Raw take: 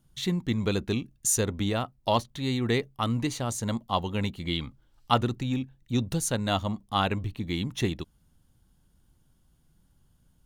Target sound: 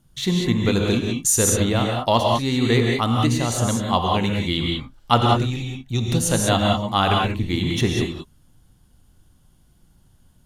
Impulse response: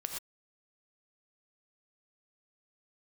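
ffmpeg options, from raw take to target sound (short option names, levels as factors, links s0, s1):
-filter_complex "[0:a]asettb=1/sr,asplit=3[s0][s1][s2];[s0]atrim=end=5.254[s3];[s1]atrim=start=5.25:end=6,asetpts=PTS-STARTPTS,afade=t=in:d=0.004:c=qsin,afade=t=out:st=0.746:d=0.004:c=qsin,equalizer=f=250:t=o:w=0.33:g=-10,equalizer=f=500:t=o:w=0.33:g=-10,equalizer=f=1000:t=o:w=0.33:g=-5,equalizer=f=1600:t=o:w=0.33:g=-8[s4];[s2]atrim=start=5.996[s5];[s3][s4]acrossfade=d=0.004:c1=hsin:c2=qsin[s6];[s6][s5]acrossfade=d=0.004:c1=qsin:c2=hsin[s7];[1:a]atrim=start_sample=2205,asetrate=27783,aresample=44100[s8];[s7][s8]afir=irnorm=-1:irlink=0,volume=1.78"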